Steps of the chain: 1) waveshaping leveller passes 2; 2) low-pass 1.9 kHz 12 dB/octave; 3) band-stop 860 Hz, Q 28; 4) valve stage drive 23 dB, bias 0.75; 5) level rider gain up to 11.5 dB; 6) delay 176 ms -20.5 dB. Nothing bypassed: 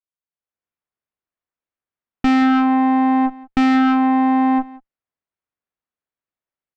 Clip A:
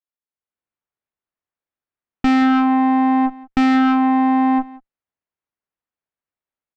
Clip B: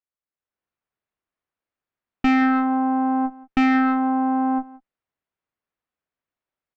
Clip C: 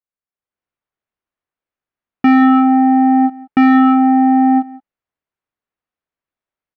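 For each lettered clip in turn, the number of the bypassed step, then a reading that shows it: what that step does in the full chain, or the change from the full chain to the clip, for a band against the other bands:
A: 3, 500 Hz band -2.0 dB; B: 1, crest factor change +4.0 dB; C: 4, loudness change +4.5 LU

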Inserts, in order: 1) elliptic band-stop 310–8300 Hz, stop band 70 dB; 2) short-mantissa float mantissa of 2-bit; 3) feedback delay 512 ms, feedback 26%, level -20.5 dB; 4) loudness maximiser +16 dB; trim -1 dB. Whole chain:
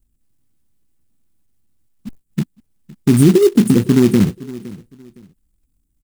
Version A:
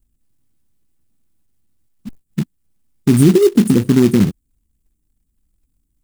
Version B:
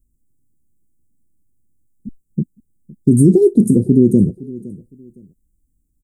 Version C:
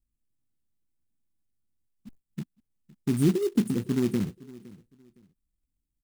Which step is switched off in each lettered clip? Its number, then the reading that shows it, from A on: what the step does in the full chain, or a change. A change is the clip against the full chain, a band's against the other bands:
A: 3, momentary loudness spread change -5 LU; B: 2, distortion -19 dB; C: 4, crest factor change +3.0 dB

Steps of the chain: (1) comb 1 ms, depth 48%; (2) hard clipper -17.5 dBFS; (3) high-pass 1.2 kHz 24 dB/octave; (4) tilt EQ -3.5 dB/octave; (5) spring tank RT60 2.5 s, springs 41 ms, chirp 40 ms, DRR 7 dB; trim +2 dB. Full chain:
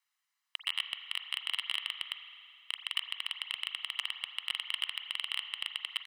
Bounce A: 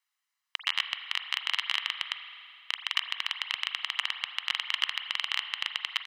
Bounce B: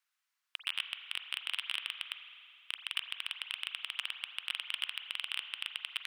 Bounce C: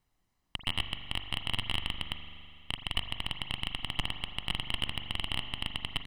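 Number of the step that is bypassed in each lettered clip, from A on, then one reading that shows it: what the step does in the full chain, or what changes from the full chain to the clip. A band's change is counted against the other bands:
2, distortion -6 dB; 1, 2 kHz band +2.0 dB; 3, 1 kHz band +6.5 dB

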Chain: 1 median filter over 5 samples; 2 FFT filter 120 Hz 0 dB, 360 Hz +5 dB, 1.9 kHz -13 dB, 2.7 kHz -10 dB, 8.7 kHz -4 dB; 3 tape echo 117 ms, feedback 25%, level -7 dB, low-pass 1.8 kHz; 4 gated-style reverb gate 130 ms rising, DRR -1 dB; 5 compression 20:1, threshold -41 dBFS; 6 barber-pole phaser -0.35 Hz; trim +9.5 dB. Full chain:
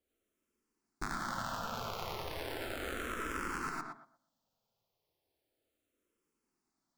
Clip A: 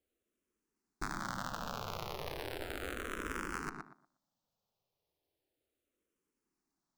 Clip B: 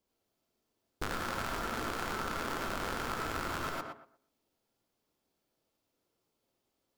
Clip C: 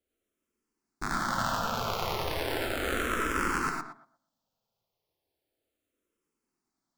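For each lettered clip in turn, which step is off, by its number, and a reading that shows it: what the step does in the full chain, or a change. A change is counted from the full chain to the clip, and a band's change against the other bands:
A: 4, loudness change -2.0 LU; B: 6, crest factor change +1.5 dB; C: 5, mean gain reduction 8.0 dB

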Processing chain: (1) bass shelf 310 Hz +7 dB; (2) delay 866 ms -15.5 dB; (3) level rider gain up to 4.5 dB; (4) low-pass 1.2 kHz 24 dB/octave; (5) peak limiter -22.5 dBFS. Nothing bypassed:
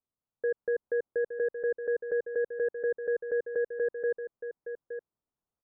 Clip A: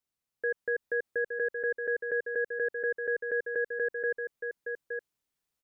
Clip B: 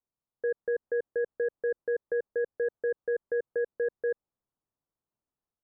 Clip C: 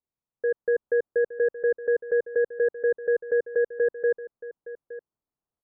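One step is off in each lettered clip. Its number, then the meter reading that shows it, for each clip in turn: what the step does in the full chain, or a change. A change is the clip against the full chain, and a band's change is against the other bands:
4, momentary loudness spread change -3 LU; 2, momentary loudness spread change -7 LU; 5, mean gain reduction 3.0 dB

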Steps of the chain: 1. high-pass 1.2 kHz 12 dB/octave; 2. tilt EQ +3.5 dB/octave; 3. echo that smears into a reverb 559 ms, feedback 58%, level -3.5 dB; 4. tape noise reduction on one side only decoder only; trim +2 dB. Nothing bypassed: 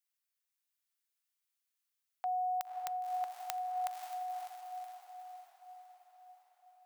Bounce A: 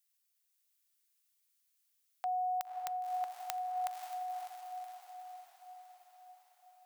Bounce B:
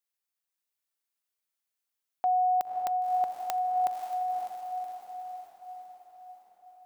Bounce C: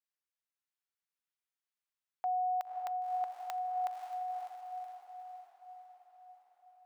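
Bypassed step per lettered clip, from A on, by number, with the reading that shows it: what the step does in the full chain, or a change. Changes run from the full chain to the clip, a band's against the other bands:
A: 4, momentary loudness spread change +1 LU; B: 1, crest factor change -8.0 dB; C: 2, crest factor change -11.0 dB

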